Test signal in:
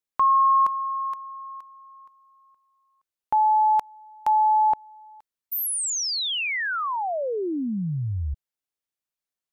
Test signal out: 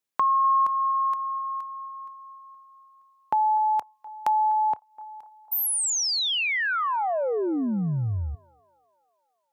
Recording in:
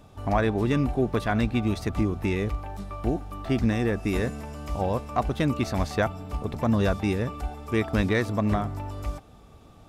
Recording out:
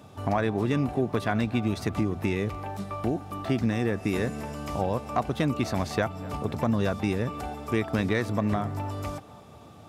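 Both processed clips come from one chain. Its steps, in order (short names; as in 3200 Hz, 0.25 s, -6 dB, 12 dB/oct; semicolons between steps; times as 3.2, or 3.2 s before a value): HPF 86 Hz 24 dB/oct; compressor 2:1, threshold -29 dBFS; narrowing echo 0.249 s, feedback 65%, band-pass 840 Hz, level -18 dB; gain +3.5 dB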